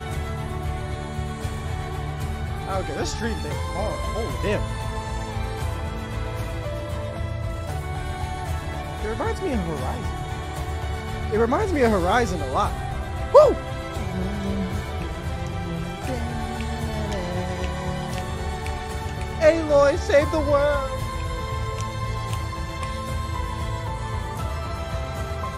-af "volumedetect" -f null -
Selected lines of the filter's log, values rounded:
mean_volume: -24.8 dB
max_volume: -2.1 dB